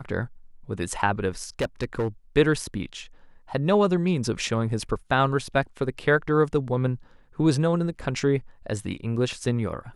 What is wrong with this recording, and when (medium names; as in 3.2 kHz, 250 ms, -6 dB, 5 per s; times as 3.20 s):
1.59–2.08 s: clipped -20.5 dBFS